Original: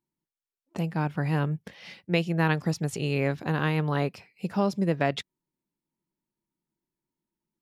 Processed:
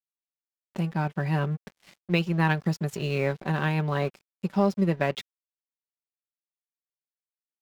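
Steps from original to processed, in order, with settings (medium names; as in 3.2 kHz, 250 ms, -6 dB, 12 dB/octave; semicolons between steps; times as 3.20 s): comb 5.2 ms, depth 46%; crossover distortion -42.5 dBFS; decimation joined by straight lines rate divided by 2×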